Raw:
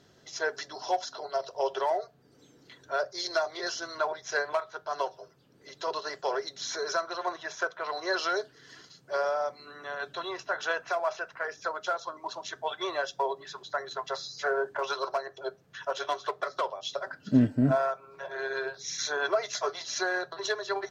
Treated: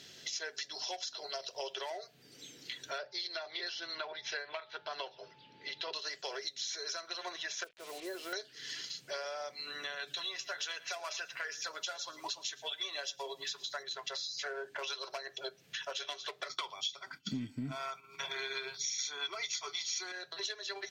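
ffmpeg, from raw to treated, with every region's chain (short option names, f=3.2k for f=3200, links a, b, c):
-filter_complex "[0:a]asettb=1/sr,asplit=3[a][b][c];[a]atrim=end=2.984[d];[b]atrim=start=2.98:end=5.93,asetpts=PTS-STARTPTS,afade=t=in:d=0.004:c=qsin,afade=t=out:st=2.946:d=0.004:c=qsin,lowpass=f=4.1k:w=0.5412,lowpass=f=4.1k:w=1.3066,aeval=exprs='val(0)+0.00112*sin(2*PI*870*n/s)':c=same[e];[c]atrim=start=5.926[f];[d][e]acrossfade=d=0.004:c1=hsin:c2=qsin[g];[g][f]acrossfade=d=0.004:c1=qsin:c2=hsin,asettb=1/sr,asplit=3[h][i][j];[h]atrim=end=7.644[k];[i]atrim=start=7.64:end=8.33,asetpts=PTS-STARTPTS,afade=t=in:d=0.004:c=qsin,afade=t=out:st=0.686:d=0.004:c=qsin,bandpass=f=260:t=q:w=1.3,acrusher=bits=8:mix=0:aa=0.5[l];[j]atrim=start=8.326[m];[k][l]acrossfade=d=0.004:c1=hsin:c2=qsin[n];[n][m]acrossfade=d=0.004:c1=qsin:c2=hsin,asettb=1/sr,asplit=3[o][p][q];[o]atrim=end=10.074[r];[p]atrim=start=10.07:end=13.83,asetpts=PTS-STARTPTS,afade=t=in:d=0.004:c=qsin,afade=t=out:st=3.756:d=0.004:c=qsin,highshelf=f=5.1k:g=9,aecho=1:1:7:0.55,atrim=end_sample=165816,aecho=1:1:110:0.0841,atrim=end_sample=165816[s];[q]atrim=start=13.826[t];[r][s]acrossfade=d=0.004:c1=hsin:c2=qsin[u];[u][t]acrossfade=d=0.004:c1=qsin:c2=hsin,asettb=1/sr,asplit=3[v][w][x];[v]atrim=end=16.494[y];[w]atrim=start=16.49:end=20.12,asetpts=PTS-STARTPTS,afade=t=in:d=0.004:c=qsin,afade=t=out:st=3.626:d=0.004:c=qsin,agate=range=-33dB:threshold=-46dB:ratio=3:release=100:detection=peak,acontrast=86,aecho=1:1:0.9:0.75,atrim=end_sample=160083[z];[x]atrim=start=20.116[aa];[y][z]acrossfade=d=0.004:c1=hsin:c2=qsin[ab];[ab][aa]acrossfade=d=0.004:c1=qsin:c2=hsin,highshelf=f=1.7k:t=q:w=1.5:g=12,acompressor=threshold=-38dB:ratio=6,equalizer=f=61:t=o:w=1.3:g=-9"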